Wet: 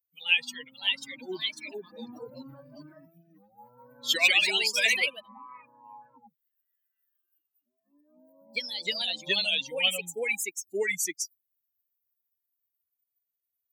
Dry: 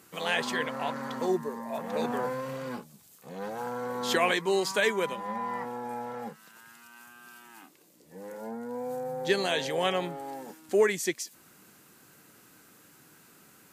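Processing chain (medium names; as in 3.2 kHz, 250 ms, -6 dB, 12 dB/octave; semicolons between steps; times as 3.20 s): expander on every frequency bin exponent 3; ever faster or slower copies 595 ms, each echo +2 st, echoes 2; resonant high shelf 1.8 kHz +12 dB, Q 3; trim -3.5 dB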